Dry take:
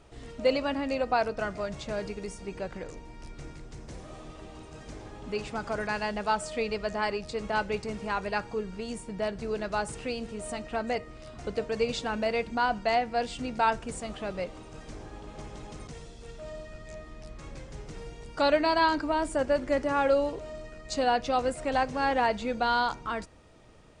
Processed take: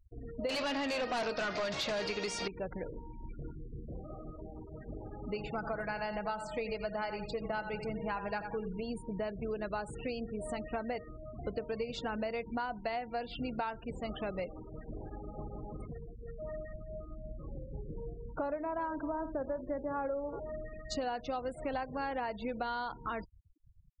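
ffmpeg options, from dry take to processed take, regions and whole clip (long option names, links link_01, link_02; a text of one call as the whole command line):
ffmpeg -i in.wav -filter_complex "[0:a]asettb=1/sr,asplit=3[link_01][link_02][link_03];[link_01]atrim=end=0.494[link_04];[link_02]atrim=start=0.49:end=2.48,asetpts=PTS-STARTPTS,afade=type=in:duration=0.004:curve=qsin,afade=type=out:start_time=1.986:duration=0.004:curve=qsin,equalizer=frequency=4300:width_type=o:width=1.4:gain=10.5,asplit=2[link_05][link_06];[link_06]highpass=frequency=720:poles=1,volume=25dB,asoftclip=type=tanh:threshold=-12dB[link_07];[link_05][link_07]amix=inputs=2:normalize=0,lowpass=frequency=5800:poles=1,volume=-6dB,asoftclip=type=hard:threshold=-19dB[link_08];[link_03]atrim=start=2.476[link_09];[link_04][link_08]acrossfade=duration=0.004:curve1=hsin:curve2=qsin[link_10];[link_10][link_09]acrossfade=duration=0.004:curve1=qsin:curve2=hsin,asettb=1/sr,asplit=3[link_11][link_12][link_13];[link_11]atrim=end=5.354[link_14];[link_12]atrim=start=5.35:end=8.83,asetpts=PTS-STARTPTS,afade=type=in:duration=0.004:curve=qsin,afade=type=out:start_time=3.476:duration=0.004:curve=qsin,aecho=1:1:6.1:0.4,atrim=end_sample=153468,aecho=1:1:88|176|264|352:0.316|0.101|0.0324|0.0104,atrim=end_sample=153468[link_15];[link_13]atrim=start=8.826[link_16];[link_14][link_15]acrossfade=duration=0.004:curve1=hsin:curve2=qsin[link_17];[link_17][link_16]acrossfade=duration=0.004:curve1=qsin:curve2=hsin,asettb=1/sr,asplit=3[link_18][link_19][link_20];[link_18]atrim=end=12.824[link_21];[link_19]atrim=start=12.82:end=14.69,asetpts=PTS-STARTPTS,afade=type=in:duration=0.004:curve=qsin,afade=type=out:start_time=1.866:duration=0.004:curve=qsin,acrossover=split=5100[link_22][link_23];[link_23]acompressor=threshold=-58dB:ratio=4:attack=1:release=60[link_24];[link_22][link_24]amix=inputs=2:normalize=0,highshelf=frequency=3600:gain=5.5[link_25];[link_20]atrim=start=14.686[link_26];[link_21][link_25]acrossfade=duration=0.004:curve1=hsin:curve2=qsin[link_27];[link_27][link_26]acrossfade=duration=0.004:curve1=qsin:curve2=hsin,asettb=1/sr,asplit=3[link_28][link_29][link_30];[link_28]atrim=end=16.734[link_31];[link_29]atrim=start=16.73:end=20.4,asetpts=PTS-STARTPTS,afade=type=in:duration=0.004:curve=qsin,afade=type=out:start_time=3.666:duration=0.004:curve=qsin,lowpass=1300,aecho=1:1:54|377:0.119|0.133,atrim=end_sample=161847[link_32];[link_30]atrim=start=20.396[link_33];[link_31][link_32]acrossfade=duration=0.004:curve1=hsin:curve2=qsin[link_34];[link_34][link_33]acrossfade=duration=0.004:curve1=qsin:curve2=hsin,afftfilt=real='re*gte(hypot(re,im),0.0126)':imag='im*gte(hypot(re,im),0.0126)':win_size=1024:overlap=0.75,highshelf=frequency=6200:gain=-10.5,acompressor=threshold=-33dB:ratio=10" out.wav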